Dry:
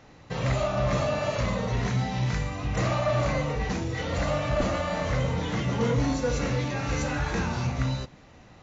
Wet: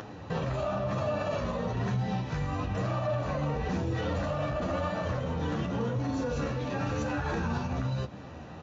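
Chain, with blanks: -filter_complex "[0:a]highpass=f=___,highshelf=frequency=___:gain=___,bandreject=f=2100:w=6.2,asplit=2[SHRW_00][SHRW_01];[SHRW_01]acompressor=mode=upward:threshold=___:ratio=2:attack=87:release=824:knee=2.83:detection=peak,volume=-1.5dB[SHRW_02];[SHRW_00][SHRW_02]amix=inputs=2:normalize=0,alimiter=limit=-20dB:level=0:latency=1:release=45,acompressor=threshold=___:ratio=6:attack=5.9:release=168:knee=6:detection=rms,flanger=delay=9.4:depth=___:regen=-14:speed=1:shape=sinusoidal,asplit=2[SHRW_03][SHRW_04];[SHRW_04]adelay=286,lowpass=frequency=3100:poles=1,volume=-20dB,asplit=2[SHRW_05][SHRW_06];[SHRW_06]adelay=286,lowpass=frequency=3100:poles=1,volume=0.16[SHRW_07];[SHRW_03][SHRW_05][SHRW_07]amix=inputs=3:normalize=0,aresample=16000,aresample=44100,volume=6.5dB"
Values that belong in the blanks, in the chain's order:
64, 3500, -11.5, -52dB, -30dB, 3.6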